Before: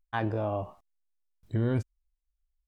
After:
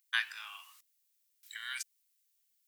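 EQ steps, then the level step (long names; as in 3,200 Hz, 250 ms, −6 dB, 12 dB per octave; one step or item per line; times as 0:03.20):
inverse Chebyshev high-pass filter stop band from 630 Hz, stop band 50 dB
spectral tilt +4 dB per octave
+6.0 dB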